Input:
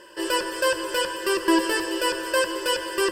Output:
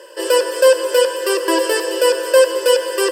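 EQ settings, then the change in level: resonant high-pass 490 Hz, resonance Q 4.9; high shelf 3600 Hz +7.5 dB; +1.0 dB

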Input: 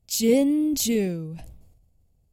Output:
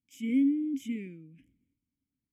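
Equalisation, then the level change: vowel filter i; high shelf 5300 Hz +5 dB; fixed phaser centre 1800 Hz, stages 4; 0.0 dB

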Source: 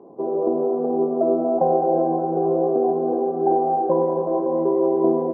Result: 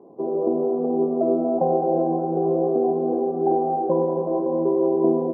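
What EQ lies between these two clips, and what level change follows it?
LPF 1200 Hz 6 dB/oct; dynamic EQ 200 Hz, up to +4 dB, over -35 dBFS, Q 0.85; -2.0 dB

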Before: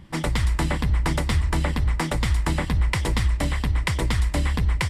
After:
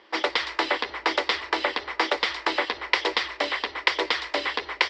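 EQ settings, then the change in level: elliptic band-pass 390–5000 Hz, stop band 40 dB; dynamic EQ 3400 Hz, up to +4 dB, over -42 dBFS, Q 1.2; +4.5 dB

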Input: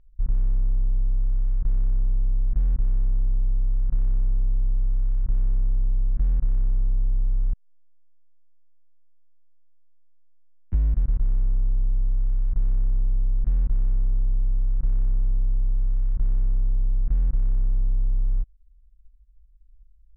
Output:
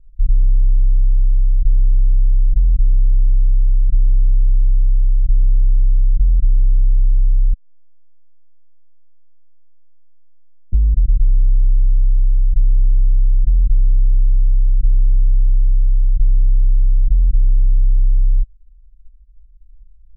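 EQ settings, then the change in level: steep low-pass 560 Hz 36 dB/oct; low shelf 76 Hz +11 dB; 0.0 dB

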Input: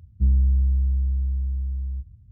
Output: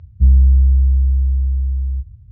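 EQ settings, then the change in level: air absorption 200 m; bell 270 Hz -14 dB 0.78 oct; +9.0 dB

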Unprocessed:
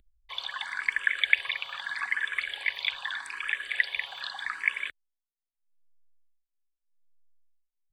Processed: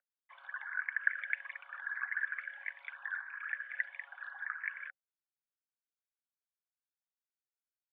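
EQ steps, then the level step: rippled Chebyshev high-pass 530 Hz, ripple 6 dB; ladder low-pass 1600 Hz, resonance 75%; notch 770 Hz, Q 21; 0.0 dB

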